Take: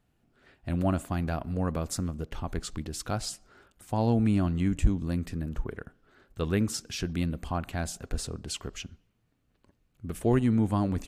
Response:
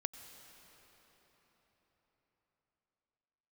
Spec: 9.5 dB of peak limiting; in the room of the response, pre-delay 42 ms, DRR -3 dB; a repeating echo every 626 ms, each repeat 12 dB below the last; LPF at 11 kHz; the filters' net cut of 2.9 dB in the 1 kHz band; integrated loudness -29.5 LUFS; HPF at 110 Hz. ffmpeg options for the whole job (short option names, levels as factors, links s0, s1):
-filter_complex "[0:a]highpass=110,lowpass=11000,equalizer=f=1000:t=o:g=-4,alimiter=limit=0.075:level=0:latency=1,aecho=1:1:626|1252|1878:0.251|0.0628|0.0157,asplit=2[s0][s1];[1:a]atrim=start_sample=2205,adelay=42[s2];[s1][s2]afir=irnorm=-1:irlink=0,volume=1.58[s3];[s0][s3]amix=inputs=2:normalize=0,volume=1.06"